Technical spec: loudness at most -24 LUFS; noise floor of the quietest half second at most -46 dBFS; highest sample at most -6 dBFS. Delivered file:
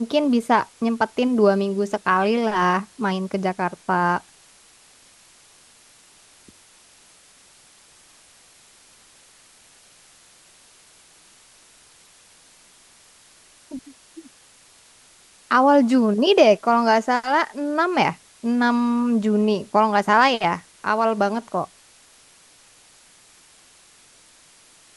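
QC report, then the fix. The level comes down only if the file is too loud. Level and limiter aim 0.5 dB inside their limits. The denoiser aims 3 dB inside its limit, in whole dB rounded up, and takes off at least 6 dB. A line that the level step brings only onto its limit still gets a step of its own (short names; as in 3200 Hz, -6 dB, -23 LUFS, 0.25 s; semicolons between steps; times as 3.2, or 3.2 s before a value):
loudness -20.0 LUFS: fail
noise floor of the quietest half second -53 dBFS: OK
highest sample -3.5 dBFS: fail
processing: gain -4.5 dB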